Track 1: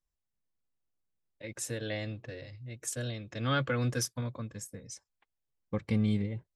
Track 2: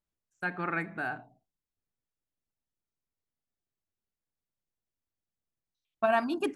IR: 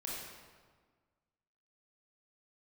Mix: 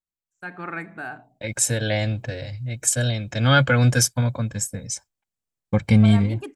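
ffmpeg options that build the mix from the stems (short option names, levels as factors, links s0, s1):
-filter_complex "[0:a]aecho=1:1:1.3:0.51,agate=range=0.0224:threshold=0.00282:ratio=3:detection=peak,volume=1.33,asplit=2[s0][s1];[1:a]acontrast=82,volume=0.15[s2];[s1]apad=whole_len=289164[s3];[s2][s3]sidechaincompress=threshold=0.0398:ratio=8:attack=16:release=268[s4];[s0][s4]amix=inputs=2:normalize=0,equalizer=f=7600:w=2.6:g=5.5,dynaudnorm=f=170:g=5:m=3.16"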